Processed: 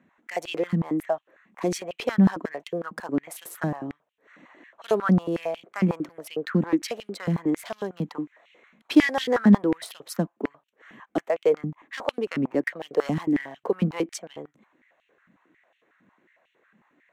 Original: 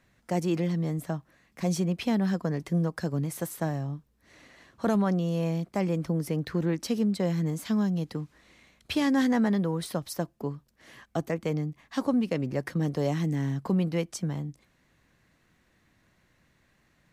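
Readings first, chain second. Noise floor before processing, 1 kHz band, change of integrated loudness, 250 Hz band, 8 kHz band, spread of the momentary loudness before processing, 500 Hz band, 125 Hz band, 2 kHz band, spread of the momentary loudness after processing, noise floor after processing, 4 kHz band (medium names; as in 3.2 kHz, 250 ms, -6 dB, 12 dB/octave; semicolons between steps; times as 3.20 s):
-68 dBFS, +3.5 dB, +3.0 dB, +2.5 dB, 0.0 dB, 9 LU, +4.5 dB, -1.0 dB, +6.5 dB, 14 LU, -73 dBFS, +3.0 dB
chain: local Wiener filter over 9 samples; step-sequenced high-pass 11 Hz 210–2900 Hz; trim +1.5 dB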